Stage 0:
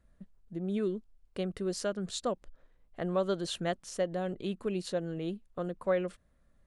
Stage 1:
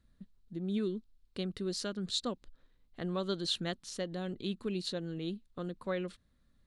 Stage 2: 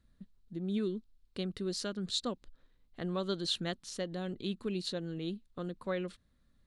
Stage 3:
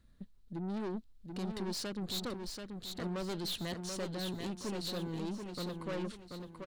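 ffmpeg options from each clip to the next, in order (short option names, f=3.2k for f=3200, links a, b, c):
-af "equalizer=f=100:t=o:w=0.67:g=4,equalizer=f=250:t=o:w=0.67:g=5,equalizer=f=630:t=o:w=0.67:g=-7,equalizer=f=4k:t=o:w=0.67:g=11,volume=-3.5dB"
-af anull
-filter_complex "[0:a]aeval=exprs='(tanh(100*val(0)+0.35)-tanh(0.35))/100':c=same,asplit=2[a][b];[b]aecho=0:1:734|1468|2202|2936:0.531|0.181|0.0614|0.0209[c];[a][c]amix=inputs=2:normalize=0,volume=4.5dB"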